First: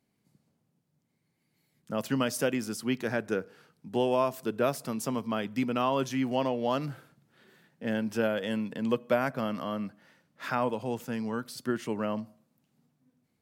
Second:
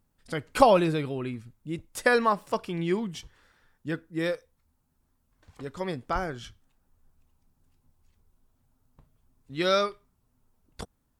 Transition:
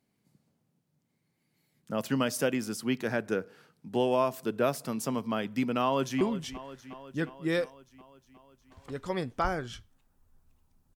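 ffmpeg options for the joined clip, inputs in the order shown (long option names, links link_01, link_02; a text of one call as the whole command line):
ffmpeg -i cue0.wav -i cue1.wav -filter_complex "[0:a]apad=whole_dur=10.95,atrim=end=10.95,atrim=end=6.212[link_01];[1:a]atrim=start=2.918:end=7.66[link_02];[link_01][link_02]acrossfade=duration=0.004:curve1=hsin:curve2=hsin,asplit=2[link_03][link_04];[link_04]afade=type=in:start_time=5.82:duration=0.01,afade=type=out:start_time=6.21:duration=0.01,aecho=0:1:360|720|1080|1440|1800|2160|2520|2880|3240:0.211349|0.147944|0.103561|0.0724927|0.0507449|0.0355214|0.024865|0.0174055|0.0121838[link_05];[link_03][link_05]amix=inputs=2:normalize=0" out.wav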